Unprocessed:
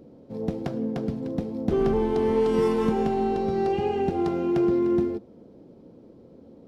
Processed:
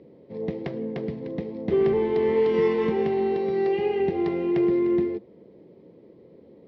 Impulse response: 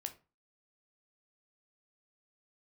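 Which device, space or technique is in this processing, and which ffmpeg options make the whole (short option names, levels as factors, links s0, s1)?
guitar cabinet: -filter_complex "[0:a]asettb=1/sr,asplit=3[s0][s1][s2];[s0]atrim=end=3.374[s3];[s1]atrim=start=3.37:end=4,asetpts=PTS-STARTPTS,afade=t=in:d=0.004:c=qsin,afade=t=out:st=0.626:d=0.004:c=qsin,highpass=f=170:p=1[s4];[s2]atrim=start=3.996[s5];[s3][s4]acrossfade=d=0.004:c1=hsin:c2=qsin[s6];[s6][s5]acrossfade=d=0.004:c1=qsin:c2=hsin,highpass=100,equalizer=f=110:t=q:w=4:g=-4,equalizer=f=250:t=q:w=4:g=-8,equalizer=f=400:t=q:w=4:g=4,equalizer=f=750:t=q:w=4:g=-5,equalizer=f=1400:t=q:w=4:g=-9,equalizer=f=2000:t=q:w=4:g=10,lowpass=f=4400:w=0.5412,lowpass=f=4400:w=1.3066"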